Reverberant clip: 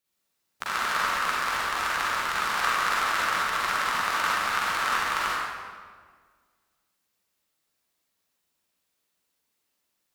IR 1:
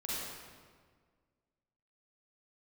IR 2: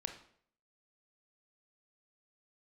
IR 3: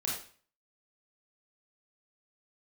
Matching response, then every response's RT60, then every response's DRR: 1; 1.7 s, 0.60 s, 0.45 s; -8.0 dB, 5.5 dB, -4.0 dB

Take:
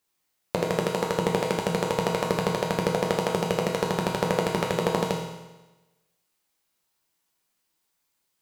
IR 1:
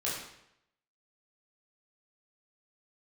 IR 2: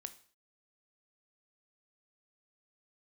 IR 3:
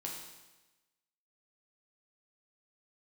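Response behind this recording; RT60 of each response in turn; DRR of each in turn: 3; 0.80 s, 0.45 s, 1.1 s; -7.5 dB, 10.0 dB, -2.0 dB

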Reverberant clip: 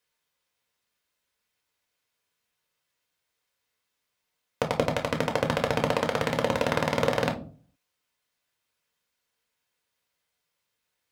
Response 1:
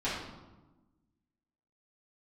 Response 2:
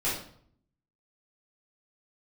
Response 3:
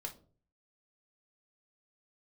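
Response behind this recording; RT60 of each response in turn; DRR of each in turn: 3; 1.2 s, 0.60 s, 0.45 s; -11.5 dB, -10.5 dB, 2.0 dB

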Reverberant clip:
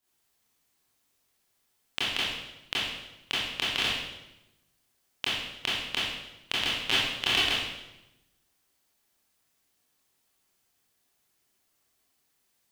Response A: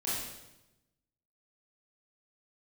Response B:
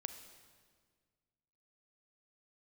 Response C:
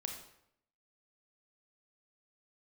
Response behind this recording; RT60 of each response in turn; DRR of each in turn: A; 0.95 s, 1.7 s, 0.75 s; -9.5 dB, 8.5 dB, 3.0 dB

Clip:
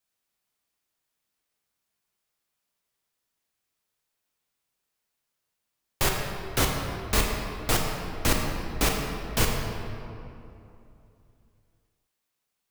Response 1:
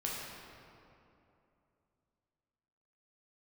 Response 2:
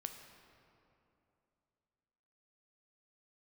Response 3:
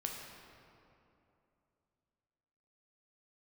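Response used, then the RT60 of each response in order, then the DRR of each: 3; 2.8 s, 2.8 s, 2.8 s; -4.5 dB, 5.5 dB, 0.0 dB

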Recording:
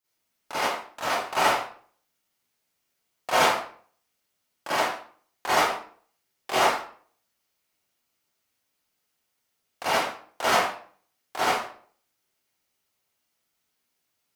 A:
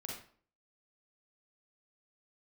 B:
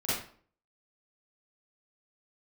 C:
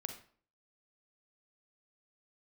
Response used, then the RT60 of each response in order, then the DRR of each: B; 0.50 s, 0.50 s, 0.50 s; -2.5 dB, -12.0 dB, 6.0 dB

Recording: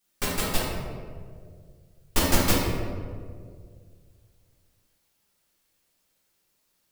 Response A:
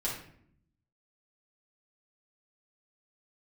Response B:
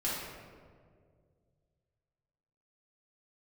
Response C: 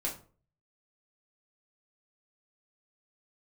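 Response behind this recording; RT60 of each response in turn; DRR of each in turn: B; 0.65 s, 2.0 s, 0.40 s; -6.5 dB, -8.5 dB, -3.0 dB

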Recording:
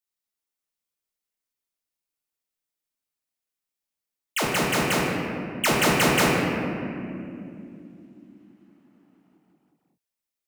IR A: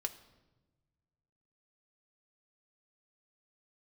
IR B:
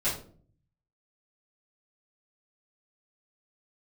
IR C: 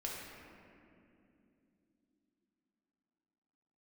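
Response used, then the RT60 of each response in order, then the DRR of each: C; 1.1 s, 0.50 s, no single decay rate; 4.0 dB, -11.5 dB, -4.0 dB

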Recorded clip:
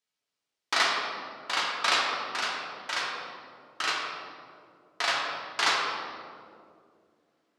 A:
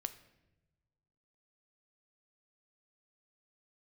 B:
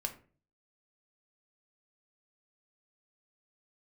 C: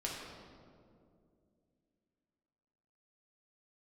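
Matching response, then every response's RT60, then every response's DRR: C; no single decay rate, 0.40 s, 2.4 s; 10.0 dB, 5.0 dB, -4.0 dB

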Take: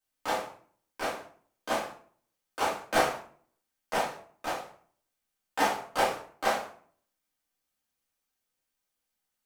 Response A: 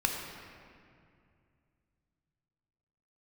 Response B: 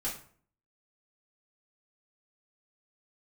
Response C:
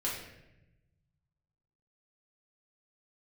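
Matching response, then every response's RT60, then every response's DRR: B; 2.3 s, 0.50 s, 0.90 s; 1.0 dB, -8.0 dB, -6.5 dB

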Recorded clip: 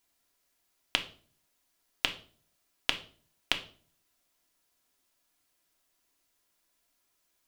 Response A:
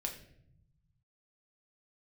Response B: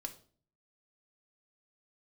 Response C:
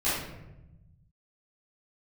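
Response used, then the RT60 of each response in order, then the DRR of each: B; 0.70 s, 0.45 s, 0.95 s; 1.5 dB, 3.5 dB, -13.0 dB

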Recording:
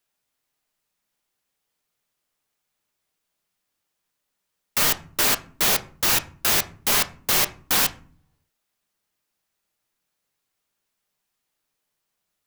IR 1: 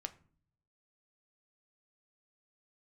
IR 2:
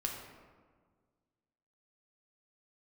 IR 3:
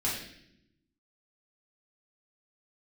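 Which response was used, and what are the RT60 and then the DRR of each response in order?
1; 0.45 s, 1.6 s, 0.75 s; 8.0 dB, 0.0 dB, -7.0 dB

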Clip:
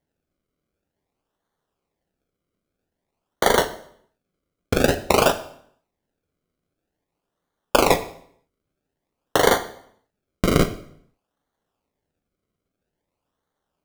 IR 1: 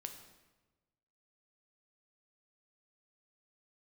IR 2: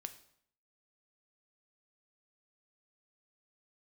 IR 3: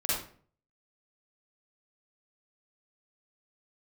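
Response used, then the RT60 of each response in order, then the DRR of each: 2; 1.2 s, 0.65 s, 0.50 s; 5.0 dB, 9.0 dB, -9.0 dB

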